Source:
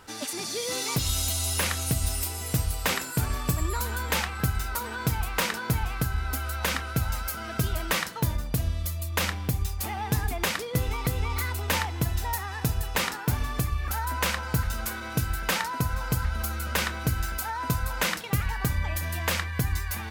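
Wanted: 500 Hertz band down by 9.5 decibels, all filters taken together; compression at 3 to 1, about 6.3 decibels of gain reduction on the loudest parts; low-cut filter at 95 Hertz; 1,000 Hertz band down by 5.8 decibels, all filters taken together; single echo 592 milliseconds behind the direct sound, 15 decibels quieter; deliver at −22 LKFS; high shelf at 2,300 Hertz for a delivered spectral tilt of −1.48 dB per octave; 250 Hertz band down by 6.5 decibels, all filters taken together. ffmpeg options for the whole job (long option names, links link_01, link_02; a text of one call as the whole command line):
ffmpeg -i in.wav -af "highpass=95,equalizer=frequency=250:width_type=o:gain=-8.5,equalizer=frequency=500:width_type=o:gain=-8,equalizer=frequency=1000:width_type=o:gain=-6.5,highshelf=frequency=2300:gain=7.5,acompressor=threshold=-29dB:ratio=3,aecho=1:1:592:0.178,volume=9dB" out.wav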